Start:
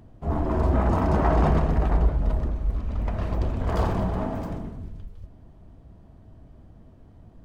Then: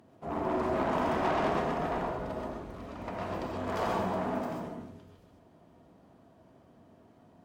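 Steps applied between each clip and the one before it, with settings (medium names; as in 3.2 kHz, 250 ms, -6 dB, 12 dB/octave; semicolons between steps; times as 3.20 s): Bessel high-pass 290 Hz, order 2; valve stage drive 26 dB, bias 0.35; gated-style reverb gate 160 ms rising, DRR 0 dB; trim -1.5 dB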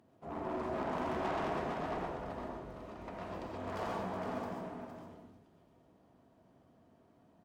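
self-modulated delay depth 0.086 ms; delay 462 ms -6.5 dB; trim -7.5 dB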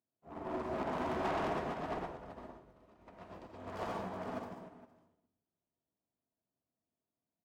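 in parallel at -7 dB: wavefolder -32.5 dBFS; on the sum: upward expansion 2.5:1, over -53 dBFS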